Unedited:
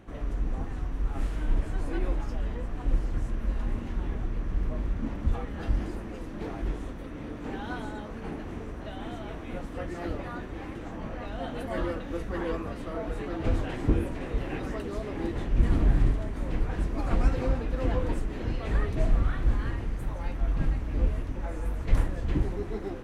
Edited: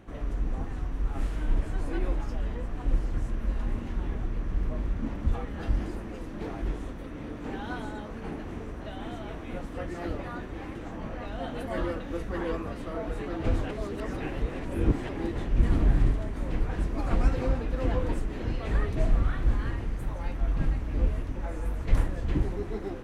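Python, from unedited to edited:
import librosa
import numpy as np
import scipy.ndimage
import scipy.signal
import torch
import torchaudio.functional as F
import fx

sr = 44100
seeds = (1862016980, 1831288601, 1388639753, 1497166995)

y = fx.edit(x, sr, fx.reverse_span(start_s=13.71, length_s=1.38), tone=tone)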